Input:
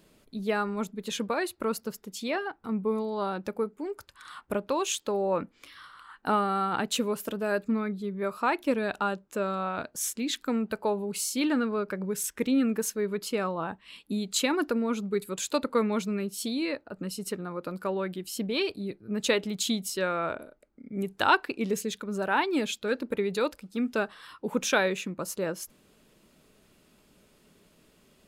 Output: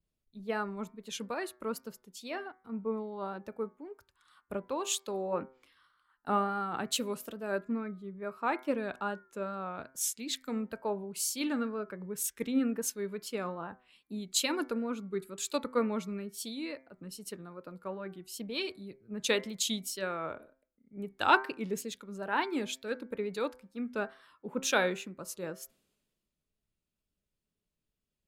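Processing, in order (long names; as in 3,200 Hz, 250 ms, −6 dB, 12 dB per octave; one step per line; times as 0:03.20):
hum removal 128.2 Hz, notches 18
tape wow and flutter 58 cents
multiband upward and downward expander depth 70%
level −6.5 dB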